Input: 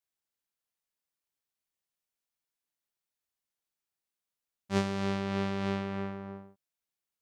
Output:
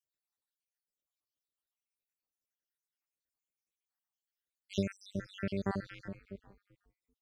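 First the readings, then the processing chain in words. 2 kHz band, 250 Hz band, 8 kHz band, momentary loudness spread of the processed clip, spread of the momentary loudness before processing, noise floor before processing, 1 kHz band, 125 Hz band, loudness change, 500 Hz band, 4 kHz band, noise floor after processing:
-6.5 dB, -5.5 dB, -5.5 dB, 13 LU, 11 LU, under -85 dBFS, -10.0 dB, -5.0 dB, -6.0 dB, -6.0 dB, -6.5 dB, under -85 dBFS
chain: random holes in the spectrogram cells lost 78%; frequency-shifting echo 387 ms, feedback 32%, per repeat -72 Hz, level -21 dB

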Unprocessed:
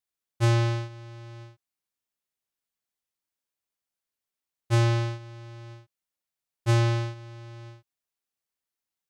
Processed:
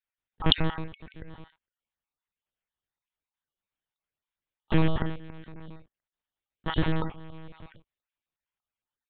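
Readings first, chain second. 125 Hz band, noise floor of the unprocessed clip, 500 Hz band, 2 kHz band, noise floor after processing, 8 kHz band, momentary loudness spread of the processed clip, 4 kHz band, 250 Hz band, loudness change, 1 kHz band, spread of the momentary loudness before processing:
-7.5 dB, under -85 dBFS, -3.0 dB, -1.5 dB, under -85 dBFS, under -35 dB, 22 LU, +7.5 dB, +3.0 dB, -3.0 dB, -1.5 dB, 21 LU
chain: random holes in the spectrogram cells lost 36%; monotone LPC vocoder at 8 kHz 160 Hz; trim +1.5 dB

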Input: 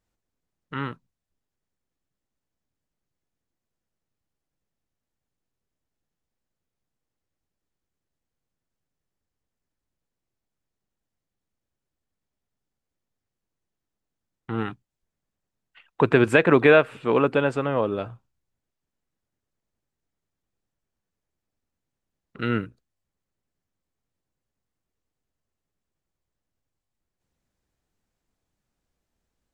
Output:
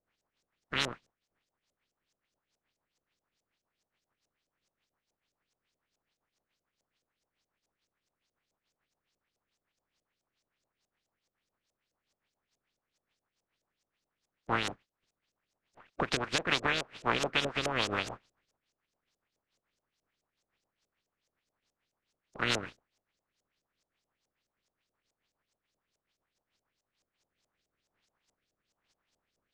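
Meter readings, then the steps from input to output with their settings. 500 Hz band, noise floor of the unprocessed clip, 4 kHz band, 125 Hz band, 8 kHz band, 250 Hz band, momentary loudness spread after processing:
-16.5 dB, -85 dBFS, +5.0 dB, -13.0 dB, no reading, -15.0 dB, 11 LU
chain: spectral contrast reduction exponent 0.25; compression 16:1, threshold -26 dBFS, peak gain reduction 17.5 dB; rotary cabinet horn 7 Hz, later 1.2 Hz, at 26.74 s; LFO low-pass saw up 4.7 Hz 540–7100 Hz; trim +1.5 dB

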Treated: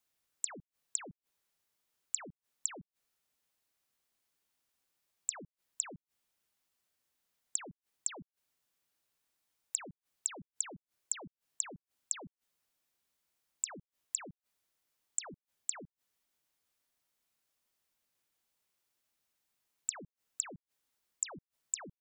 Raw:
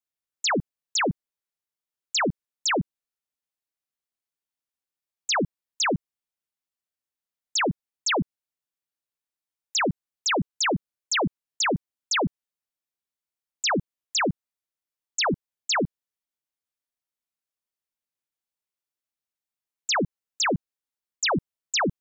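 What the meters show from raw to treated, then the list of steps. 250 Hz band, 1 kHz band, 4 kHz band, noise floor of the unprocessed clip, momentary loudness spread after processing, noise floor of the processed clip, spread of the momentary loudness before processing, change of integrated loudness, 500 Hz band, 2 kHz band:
-25.0 dB, -25.0 dB, -25.0 dB, under -85 dBFS, 14 LU, under -85 dBFS, 6 LU, -13.0 dB, -25.0 dB, -25.0 dB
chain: inverted gate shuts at -27 dBFS, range -34 dB; trim +9 dB

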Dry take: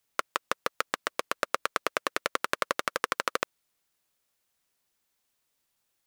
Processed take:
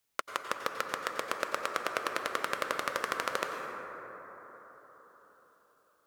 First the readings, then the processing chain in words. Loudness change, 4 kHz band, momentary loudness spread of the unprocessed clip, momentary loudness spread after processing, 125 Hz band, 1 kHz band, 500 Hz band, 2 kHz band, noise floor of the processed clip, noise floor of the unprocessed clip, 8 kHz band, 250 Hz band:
-3.0 dB, -3.5 dB, 4 LU, 16 LU, -2.0 dB, -2.0 dB, -2.0 dB, -2.5 dB, -70 dBFS, -78 dBFS, -4.0 dB, -2.0 dB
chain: peak limiter -8 dBFS, peak gain reduction 4 dB; plate-style reverb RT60 4.7 s, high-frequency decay 0.25×, pre-delay 80 ms, DRR 3 dB; trim -2 dB

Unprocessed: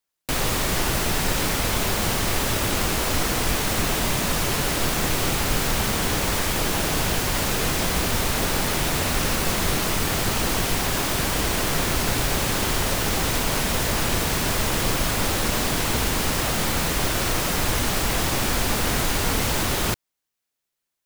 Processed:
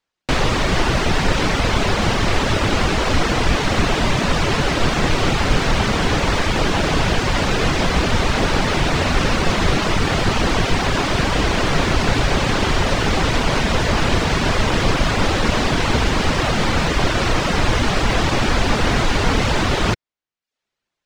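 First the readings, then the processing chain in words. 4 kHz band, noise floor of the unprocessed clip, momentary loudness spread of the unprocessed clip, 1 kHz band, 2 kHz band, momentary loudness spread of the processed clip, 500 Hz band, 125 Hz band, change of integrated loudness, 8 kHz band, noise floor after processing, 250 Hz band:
+3.5 dB, -82 dBFS, 0 LU, +6.5 dB, +5.5 dB, 1 LU, +6.5 dB, +7.0 dB, +4.0 dB, -4.5 dB, -83 dBFS, +7.0 dB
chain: reverb removal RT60 0.54 s; distance through air 130 m; trim +8.5 dB

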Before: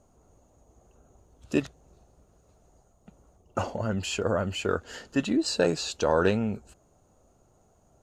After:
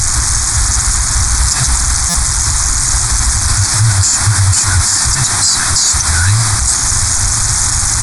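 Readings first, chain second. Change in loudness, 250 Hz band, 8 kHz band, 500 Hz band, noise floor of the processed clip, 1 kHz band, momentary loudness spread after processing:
+18.0 dB, +1.0 dB, +35.0 dB, -6.0 dB, -14 dBFS, +15.5 dB, 2 LU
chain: jump at every zero crossing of -25 dBFS; reverb removal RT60 1.3 s; FFT band-reject 130–1400 Hz; FFT filter 270 Hz 0 dB, 890 Hz -13 dB, 3.2 kHz -7 dB, 5.2 kHz +9 dB; compression 6:1, threshold -28 dBFS, peak gain reduction 11.5 dB; word length cut 6-bit, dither triangular; static phaser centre 1.2 kHz, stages 4; delay 934 ms -16 dB; resampled via 22.05 kHz; buffer glitch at 2.09 s, samples 256, times 8; loudness maximiser +29 dB; trim -1 dB

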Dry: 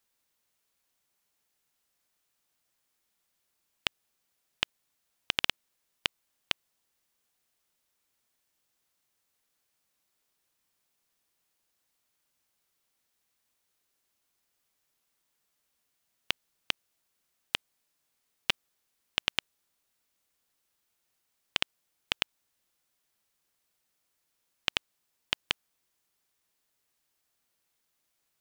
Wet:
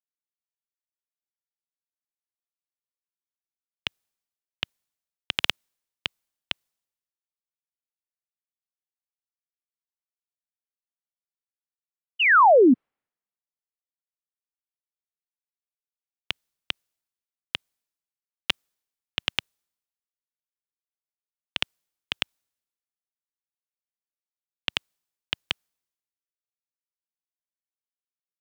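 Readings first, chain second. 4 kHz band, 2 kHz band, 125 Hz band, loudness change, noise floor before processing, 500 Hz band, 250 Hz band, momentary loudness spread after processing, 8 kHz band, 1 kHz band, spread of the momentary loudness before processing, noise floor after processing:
+2.5 dB, +9.5 dB, +5.5 dB, +9.0 dB, -79 dBFS, +23.5 dB, +24.0 dB, 18 LU, no reading, +20.0 dB, 5 LU, under -85 dBFS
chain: painted sound fall, 12.19–12.74 s, 230–3100 Hz -22 dBFS; three bands expanded up and down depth 100%; trim -1 dB

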